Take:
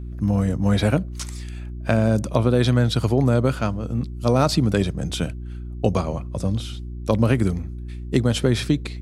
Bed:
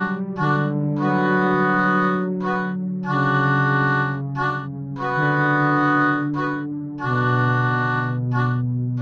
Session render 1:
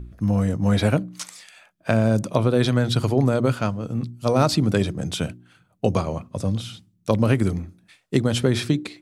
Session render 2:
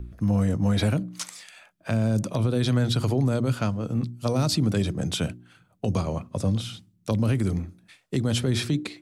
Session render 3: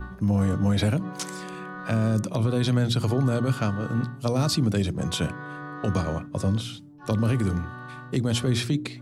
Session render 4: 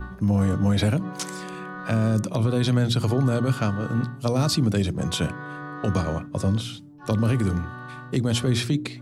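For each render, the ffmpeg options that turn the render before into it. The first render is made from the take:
-af "bandreject=f=60:t=h:w=4,bandreject=f=120:t=h:w=4,bandreject=f=180:t=h:w=4,bandreject=f=240:t=h:w=4,bandreject=f=300:t=h:w=4,bandreject=f=360:t=h:w=4"
-filter_complex "[0:a]acrossover=split=270|3000[s0][s1][s2];[s1]acompressor=threshold=0.0501:ratio=6[s3];[s0][s3][s2]amix=inputs=3:normalize=0,alimiter=limit=0.178:level=0:latency=1:release=36"
-filter_complex "[1:a]volume=0.112[s0];[0:a][s0]amix=inputs=2:normalize=0"
-af "volume=1.19"

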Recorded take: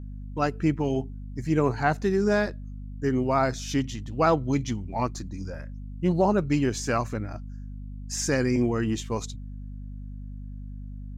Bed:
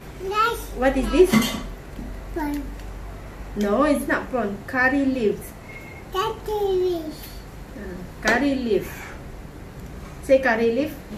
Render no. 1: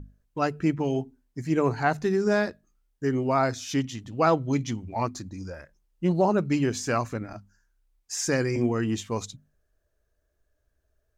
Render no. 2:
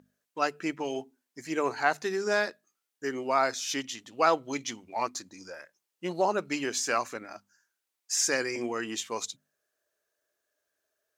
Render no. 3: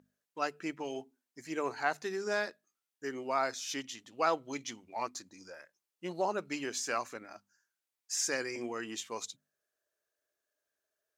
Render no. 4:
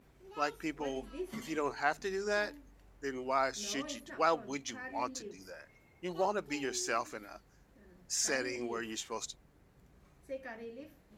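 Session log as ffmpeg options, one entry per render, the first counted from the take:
-af "bandreject=f=50:t=h:w=6,bandreject=f=100:t=h:w=6,bandreject=f=150:t=h:w=6,bandreject=f=200:t=h:w=6,bandreject=f=250:t=h:w=6"
-af "highpass=360,tiltshelf=f=1200:g=-4"
-af "volume=0.501"
-filter_complex "[1:a]volume=0.0501[s0];[0:a][s0]amix=inputs=2:normalize=0"

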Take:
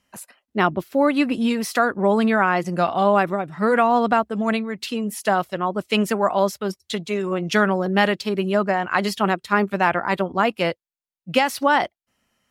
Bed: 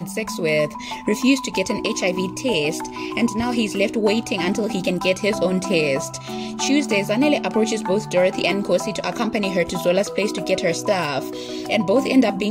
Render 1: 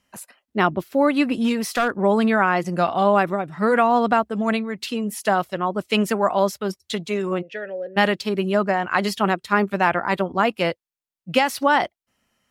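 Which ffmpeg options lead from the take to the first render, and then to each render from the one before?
-filter_complex "[0:a]asettb=1/sr,asplit=3[s0][s1][s2];[s0]atrim=end=1.334[s3];[s1]atrim=start=1.33:end=1.94,asetpts=PTS-STARTPTS,afade=t=in:d=0.004:c=qsin,afade=t=out:st=0.606:d=0.004:c=qsin,asoftclip=type=hard:threshold=0.188[s4];[s2]atrim=start=1.936[s5];[s3][s4]acrossfade=d=0.004:c1=hsin:c2=qsin[s6];[s6][s5]acrossfade=d=0.004:c1=qsin:c2=hsin,asplit=3[s7][s8][s9];[s7]afade=t=out:st=7.41:d=0.02[s10];[s8]asplit=3[s11][s12][s13];[s11]bandpass=f=530:t=q:w=8,volume=1[s14];[s12]bandpass=f=1840:t=q:w=8,volume=0.501[s15];[s13]bandpass=f=2480:t=q:w=8,volume=0.355[s16];[s14][s15][s16]amix=inputs=3:normalize=0,afade=t=in:st=7.41:d=0.02,afade=t=out:st=7.96:d=0.02[s17];[s9]afade=t=in:st=7.96:d=0.02[s18];[s10][s17][s18]amix=inputs=3:normalize=0"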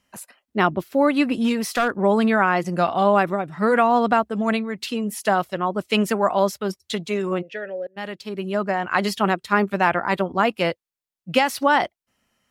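-filter_complex "[0:a]asplit=2[s0][s1];[s0]atrim=end=7.87,asetpts=PTS-STARTPTS,afade=t=out:st=7.866:d=0.004:c=hsin:silence=0.0794328[s2];[s1]atrim=start=7.87,asetpts=PTS-STARTPTS,afade=t=in:d=1.12:silence=0.0794328[s3];[s2][s3]concat=n=2:v=0:a=1"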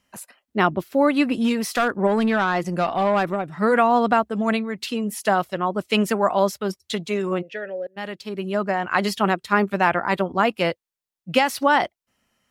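-filter_complex "[0:a]asplit=3[s0][s1][s2];[s0]afade=t=out:st=2.06:d=0.02[s3];[s1]aeval=exprs='(tanh(4.47*val(0)+0.15)-tanh(0.15))/4.47':c=same,afade=t=in:st=2.06:d=0.02,afade=t=out:st=3.5:d=0.02[s4];[s2]afade=t=in:st=3.5:d=0.02[s5];[s3][s4][s5]amix=inputs=3:normalize=0"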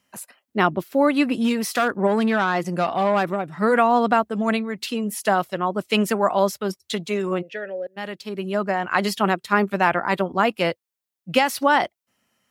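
-af "highpass=97,highshelf=f=11000:g=4.5"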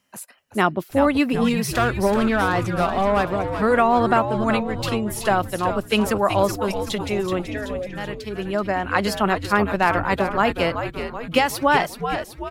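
-filter_complex "[0:a]asplit=8[s0][s1][s2][s3][s4][s5][s6][s7];[s1]adelay=379,afreqshift=-110,volume=0.398[s8];[s2]adelay=758,afreqshift=-220,volume=0.224[s9];[s3]adelay=1137,afreqshift=-330,volume=0.124[s10];[s4]adelay=1516,afreqshift=-440,volume=0.07[s11];[s5]adelay=1895,afreqshift=-550,volume=0.0394[s12];[s6]adelay=2274,afreqshift=-660,volume=0.0219[s13];[s7]adelay=2653,afreqshift=-770,volume=0.0123[s14];[s0][s8][s9][s10][s11][s12][s13][s14]amix=inputs=8:normalize=0"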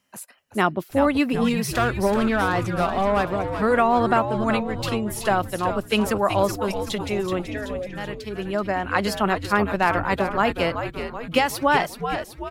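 -af "volume=0.841"

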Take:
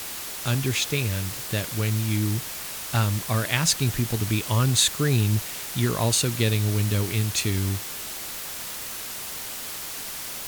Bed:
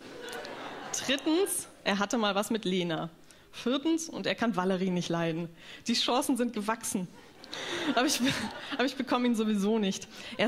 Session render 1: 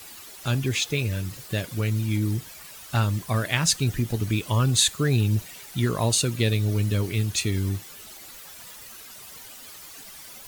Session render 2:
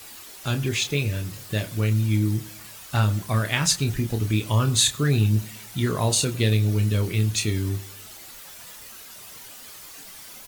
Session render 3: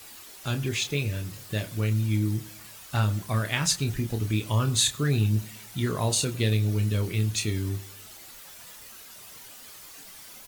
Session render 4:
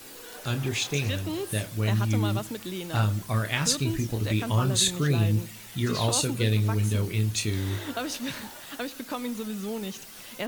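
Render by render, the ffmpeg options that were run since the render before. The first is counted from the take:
-af "afftdn=nr=12:nf=-35"
-filter_complex "[0:a]asplit=2[s0][s1];[s1]adelay=28,volume=0.422[s2];[s0][s2]amix=inputs=2:normalize=0,asplit=2[s3][s4];[s4]adelay=101,lowpass=f=2000:p=1,volume=0.112,asplit=2[s5][s6];[s6]adelay=101,lowpass=f=2000:p=1,volume=0.51,asplit=2[s7][s8];[s8]adelay=101,lowpass=f=2000:p=1,volume=0.51,asplit=2[s9][s10];[s10]adelay=101,lowpass=f=2000:p=1,volume=0.51[s11];[s3][s5][s7][s9][s11]amix=inputs=5:normalize=0"
-af "volume=0.668"
-filter_complex "[1:a]volume=0.531[s0];[0:a][s0]amix=inputs=2:normalize=0"

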